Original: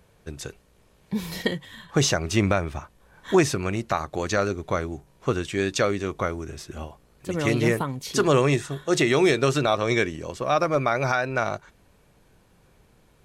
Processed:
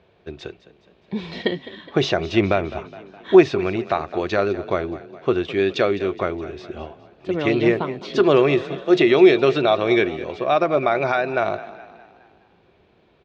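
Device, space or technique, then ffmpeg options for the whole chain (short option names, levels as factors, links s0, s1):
frequency-shifting delay pedal into a guitar cabinet: -filter_complex "[0:a]asplit=6[s0][s1][s2][s3][s4][s5];[s1]adelay=208,afreqshift=32,volume=0.15[s6];[s2]adelay=416,afreqshift=64,volume=0.0776[s7];[s3]adelay=624,afreqshift=96,volume=0.0403[s8];[s4]adelay=832,afreqshift=128,volume=0.0211[s9];[s5]adelay=1040,afreqshift=160,volume=0.011[s10];[s0][s6][s7][s8][s9][s10]amix=inputs=6:normalize=0,highpass=75,equalizer=f=130:t=q:w=4:g=-5,equalizer=f=370:t=q:w=4:g=9,equalizer=f=680:t=q:w=4:g=7,equalizer=f=2500:t=q:w=4:g=4,equalizer=f=3600:t=q:w=4:g=4,lowpass=f=4200:w=0.5412,lowpass=f=4200:w=1.3066"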